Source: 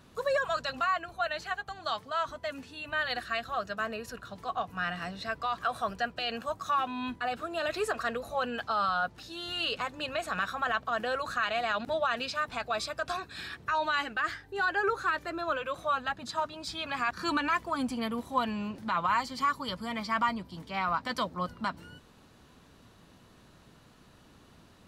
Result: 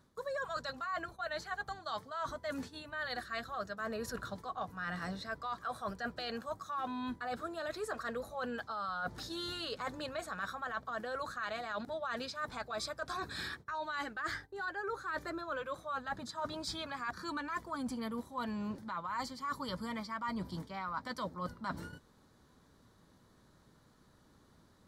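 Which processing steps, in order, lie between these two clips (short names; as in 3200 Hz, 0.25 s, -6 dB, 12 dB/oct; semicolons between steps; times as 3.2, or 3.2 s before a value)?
gate -47 dBFS, range -12 dB; bell 2700 Hz -13.5 dB 0.38 oct; notch 700 Hz, Q 13; reverse; compressor 10:1, threshold -41 dBFS, peak gain reduction 18.5 dB; reverse; gain +5 dB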